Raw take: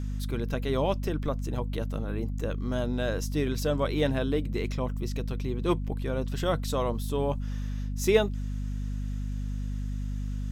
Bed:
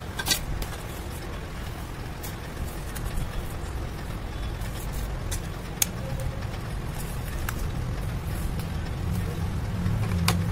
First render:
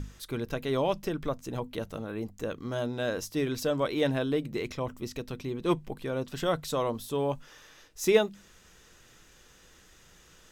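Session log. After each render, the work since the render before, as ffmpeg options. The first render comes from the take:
ffmpeg -i in.wav -af "bandreject=frequency=50:width_type=h:width=6,bandreject=frequency=100:width_type=h:width=6,bandreject=frequency=150:width_type=h:width=6,bandreject=frequency=200:width_type=h:width=6,bandreject=frequency=250:width_type=h:width=6" out.wav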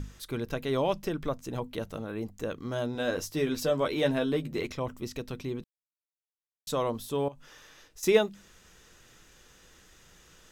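ffmpeg -i in.wav -filter_complex "[0:a]asettb=1/sr,asplit=3[link_01][link_02][link_03];[link_01]atrim=end=2.944[link_04];[link_02]atrim=start=2.94:end=4.67,asetpts=PTS-STARTPTS,afade=type=in:duration=0.004:curve=qsin,afade=type=out:start_time=1.726:duration=0.004:curve=qsin,asplit=2[link_05][link_06];[link_06]adelay=12,volume=-5.5dB[link_07];[link_05][link_07]amix=inputs=2:normalize=0,atrim=end_sample=76293[link_08];[link_03]atrim=start=4.666[link_09];[link_04][link_08]acrossfade=duration=0.004:curve1=hsin:curve2=qsin[link_10];[link_10][link_09]acrossfade=duration=0.004:curve1=qsin:curve2=hsin,asettb=1/sr,asplit=3[link_11][link_12][link_13];[link_11]atrim=end=7.284[link_14];[link_12]atrim=start=7.28:end=8.03,asetpts=PTS-STARTPTS,afade=type=in:duration=0.004:curve=qsin,afade=type=out:start_time=0.746:duration=0.004:curve=qsin,acompressor=threshold=-45dB:ratio=4:attack=3.2:release=140:knee=1:detection=peak[link_15];[link_13]atrim=start=8.026[link_16];[link_14][link_15]acrossfade=duration=0.004:curve1=hsin:curve2=qsin[link_17];[link_17][link_16]acrossfade=duration=0.004:curve1=qsin:curve2=hsin,asplit=3[link_18][link_19][link_20];[link_18]atrim=end=5.64,asetpts=PTS-STARTPTS,afade=type=out:start_time=5.636:duration=0.004:curve=hsin[link_21];[link_19]atrim=start=5.64:end=6.67,asetpts=PTS-STARTPTS,volume=0[link_22];[link_20]atrim=start=6.67,asetpts=PTS-STARTPTS,afade=type=in:duration=0.004:curve=hsin[link_23];[link_21][link_22][link_23]concat=n=3:v=0:a=1" out.wav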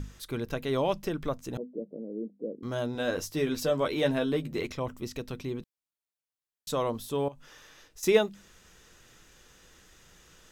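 ffmpeg -i in.wav -filter_complex "[0:a]asettb=1/sr,asplit=3[link_01][link_02][link_03];[link_01]atrim=end=1.574[link_04];[link_02]atrim=start=1.57:end=2.63,asetpts=PTS-STARTPTS,afade=type=in:duration=0.004:curve=qsin,afade=type=out:start_time=1.056:duration=0.004:curve=qsin,asuperpass=centerf=320:order=8:qfactor=0.92[link_05];[link_03]atrim=start=2.626[link_06];[link_04][link_05]acrossfade=duration=0.004:curve1=hsin:curve2=qsin[link_07];[link_07][link_06]acrossfade=duration=0.004:curve1=qsin:curve2=hsin" out.wav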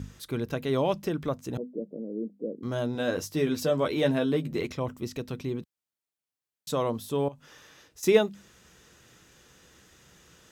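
ffmpeg -i in.wav -af "highpass=78,lowshelf=frequency=360:gain=4.5" out.wav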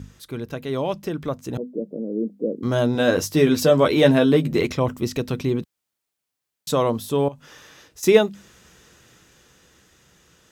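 ffmpeg -i in.wav -af "dynaudnorm=framelen=330:gausssize=11:maxgain=11.5dB" out.wav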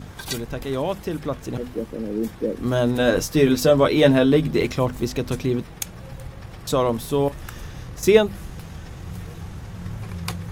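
ffmpeg -i in.wav -i bed.wav -filter_complex "[1:a]volume=-6dB[link_01];[0:a][link_01]amix=inputs=2:normalize=0" out.wav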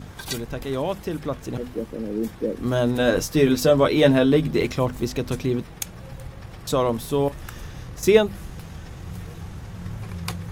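ffmpeg -i in.wav -af "volume=-1dB" out.wav

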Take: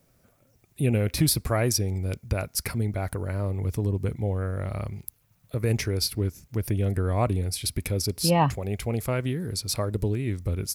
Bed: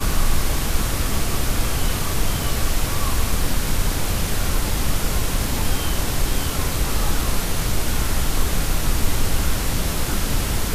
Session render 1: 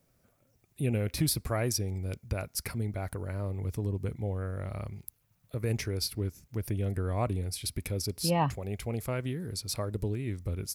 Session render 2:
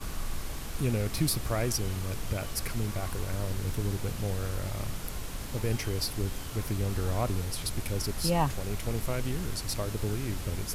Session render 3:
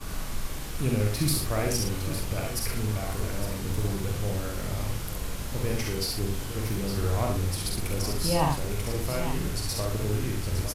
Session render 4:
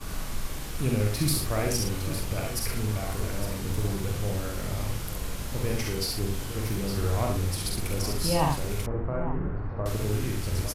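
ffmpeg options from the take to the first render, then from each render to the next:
ffmpeg -i in.wav -af "volume=-6dB" out.wav
ffmpeg -i in.wav -i bed.wav -filter_complex "[1:a]volume=-16dB[link_01];[0:a][link_01]amix=inputs=2:normalize=0" out.wav
ffmpeg -i in.wav -filter_complex "[0:a]asplit=2[link_01][link_02];[link_02]adelay=46,volume=-5.5dB[link_03];[link_01][link_03]amix=inputs=2:normalize=0,aecho=1:1:67|861:0.668|0.316" out.wav
ffmpeg -i in.wav -filter_complex "[0:a]asettb=1/sr,asplit=3[link_01][link_02][link_03];[link_01]atrim=end=8.864[link_04];[link_02]atrim=start=8.86:end=9.86,asetpts=PTS-STARTPTS,afade=type=in:duration=0.004:curve=qsin,afade=type=out:start_time=0.996:duration=0.004:curve=qsin,lowpass=frequency=1500:width=0.5412,lowpass=frequency=1500:width=1.3066[link_05];[link_03]atrim=start=9.856[link_06];[link_04][link_05]acrossfade=duration=0.004:curve1=hsin:curve2=qsin[link_07];[link_07][link_06]acrossfade=duration=0.004:curve1=qsin:curve2=hsin" out.wav

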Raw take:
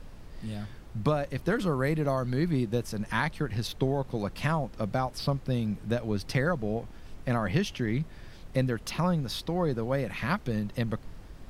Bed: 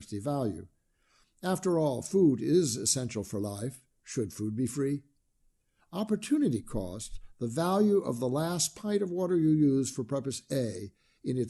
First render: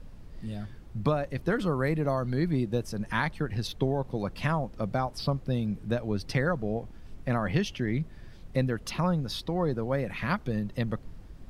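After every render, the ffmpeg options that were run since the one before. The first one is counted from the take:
ffmpeg -i in.wav -af "afftdn=noise_reduction=6:noise_floor=-47" out.wav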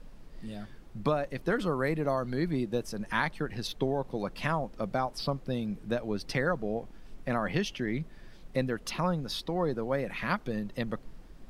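ffmpeg -i in.wav -af "equalizer=frequency=80:width=0.96:gain=-13.5" out.wav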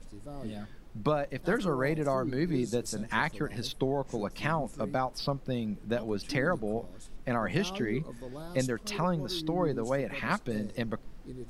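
ffmpeg -i in.wav -i bed.wav -filter_complex "[1:a]volume=-12.5dB[link_01];[0:a][link_01]amix=inputs=2:normalize=0" out.wav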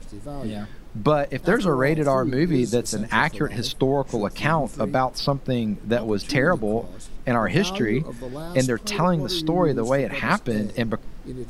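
ffmpeg -i in.wav -af "volume=9dB" out.wav

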